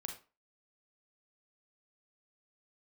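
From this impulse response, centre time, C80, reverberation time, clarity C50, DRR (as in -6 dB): 20 ms, 13.5 dB, 0.35 s, 7.5 dB, 3.0 dB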